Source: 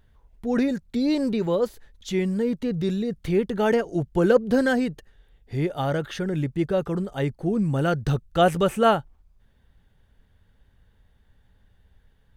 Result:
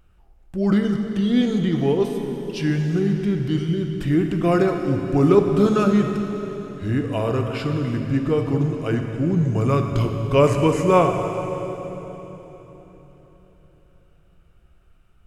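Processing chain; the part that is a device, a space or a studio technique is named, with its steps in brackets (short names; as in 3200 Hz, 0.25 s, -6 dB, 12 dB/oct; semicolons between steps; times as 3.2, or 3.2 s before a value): slowed and reverbed (varispeed -19%; reverb RT60 3.9 s, pre-delay 5 ms, DRR 4 dB); gain +2 dB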